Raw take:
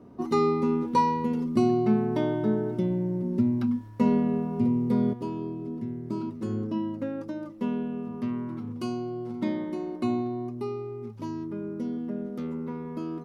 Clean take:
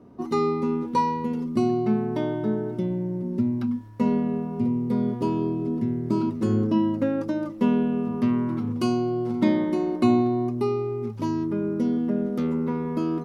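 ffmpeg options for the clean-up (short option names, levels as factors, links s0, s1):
-af "asetnsamples=n=441:p=0,asendcmd='5.13 volume volume 8dB',volume=1"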